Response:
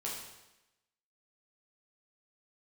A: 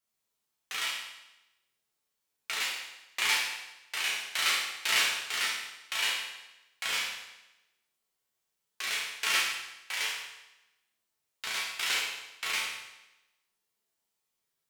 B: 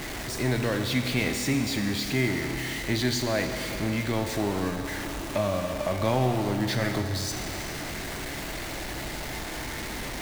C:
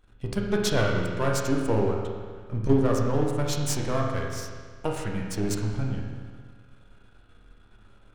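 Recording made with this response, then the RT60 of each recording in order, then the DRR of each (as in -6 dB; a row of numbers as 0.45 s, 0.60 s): A; 0.95 s, 3.0 s, 1.7 s; -5.0 dB, 4.5 dB, -1.0 dB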